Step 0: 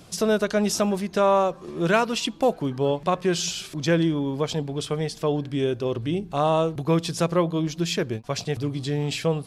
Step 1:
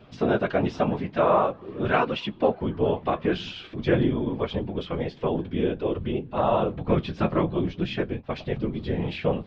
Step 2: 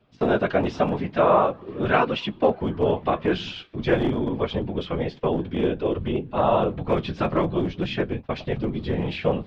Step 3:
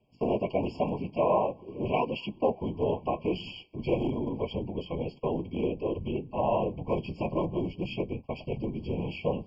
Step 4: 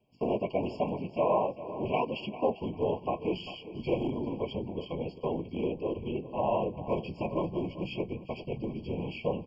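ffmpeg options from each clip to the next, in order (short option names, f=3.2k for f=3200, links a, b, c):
-af "lowpass=f=3.2k:w=0.5412,lowpass=f=3.2k:w=1.3066,afftfilt=real='hypot(re,im)*cos(2*PI*random(0))':imag='hypot(re,im)*sin(2*PI*random(1))':win_size=512:overlap=0.75,flanger=delay=8:depth=4.4:regen=-45:speed=0.48:shape=sinusoidal,volume=8.5dB"
-filter_complex "[0:a]agate=range=-15dB:threshold=-39dB:ratio=16:detection=peak,acrossover=split=330[a][b];[a]aeval=exprs='0.0631*(abs(mod(val(0)/0.0631+3,4)-2)-1)':c=same[c];[c][b]amix=inputs=2:normalize=0,volume=2.5dB"
-af "afftfilt=real='re*eq(mod(floor(b*sr/1024/1100),2),0)':imag='im*eq(mod(floor(b*sr/1024/1100),2),0)':win_size=1024:overlap=0.75,volume=-6.5dB"
-af "lowshelf=f=93:g=-5.5,aecho=1:1:397|794|1191:0.188|0.0527|0.0148,volume=-1.5dB"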